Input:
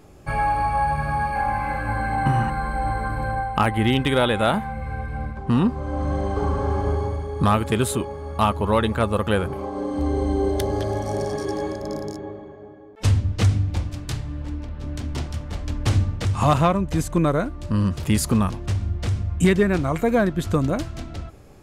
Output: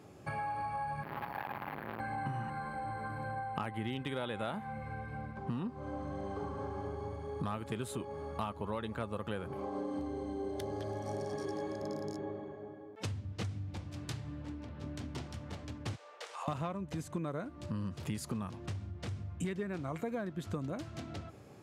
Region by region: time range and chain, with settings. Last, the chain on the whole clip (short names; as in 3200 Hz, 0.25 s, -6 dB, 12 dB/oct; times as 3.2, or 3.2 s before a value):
1.03–2 careless resampling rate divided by 3×, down filtered, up hold + core saturation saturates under 1200 Hz
15.95–16.48 elliptic high-pass 470 Hz, stop band 60 dB + compressor 2.5:1, threshold -39 dBFS + doubler 22 ms -12.5 dB
whole clip: compressor 6:1, threshold -30 dBFS; HPF 93 Hz 24 dB/oct; high shelf 8400 Hz -6 dB; gain -5 dB